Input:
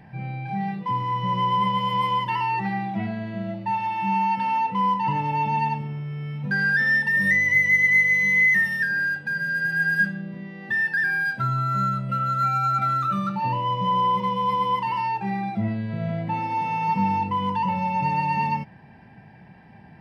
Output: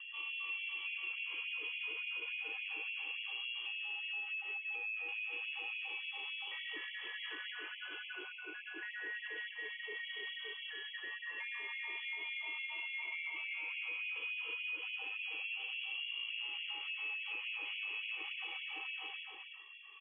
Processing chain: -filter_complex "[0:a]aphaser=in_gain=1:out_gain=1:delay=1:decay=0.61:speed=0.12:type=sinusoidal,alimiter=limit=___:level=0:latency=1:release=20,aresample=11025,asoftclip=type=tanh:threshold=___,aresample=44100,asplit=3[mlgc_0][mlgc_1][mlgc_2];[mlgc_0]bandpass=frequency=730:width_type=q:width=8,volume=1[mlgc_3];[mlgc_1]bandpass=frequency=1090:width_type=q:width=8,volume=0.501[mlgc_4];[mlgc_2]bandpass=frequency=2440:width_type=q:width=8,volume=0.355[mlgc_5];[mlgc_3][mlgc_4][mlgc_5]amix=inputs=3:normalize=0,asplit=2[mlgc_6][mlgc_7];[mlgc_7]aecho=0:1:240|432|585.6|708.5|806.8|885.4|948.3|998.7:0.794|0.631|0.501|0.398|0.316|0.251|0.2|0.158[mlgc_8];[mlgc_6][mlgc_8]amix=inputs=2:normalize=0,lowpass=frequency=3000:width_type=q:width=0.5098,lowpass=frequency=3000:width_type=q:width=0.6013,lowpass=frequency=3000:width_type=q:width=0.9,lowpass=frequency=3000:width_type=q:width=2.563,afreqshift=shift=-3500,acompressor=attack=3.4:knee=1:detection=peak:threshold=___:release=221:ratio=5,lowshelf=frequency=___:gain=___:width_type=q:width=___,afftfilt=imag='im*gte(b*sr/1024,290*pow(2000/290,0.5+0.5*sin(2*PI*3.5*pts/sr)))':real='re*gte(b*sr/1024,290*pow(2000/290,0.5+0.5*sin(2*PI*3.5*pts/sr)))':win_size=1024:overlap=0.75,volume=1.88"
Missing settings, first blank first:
0.211, 0.0398, 0.00708, 450, 13.5, 3